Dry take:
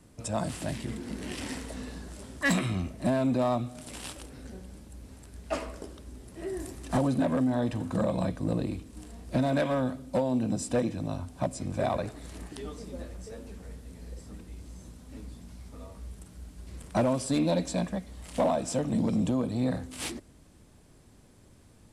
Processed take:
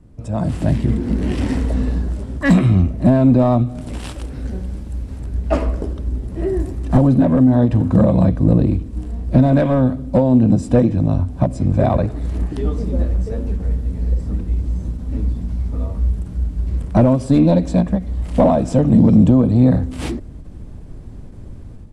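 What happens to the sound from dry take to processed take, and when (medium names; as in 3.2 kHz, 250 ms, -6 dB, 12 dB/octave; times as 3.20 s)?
3.98–5.20 s: tilt shelf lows -3.5 dB
whole clip: tilt EQ -3.5 dB/octave; level rider gain up to 11 dB; endings held to a fixed fall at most 190 dB/s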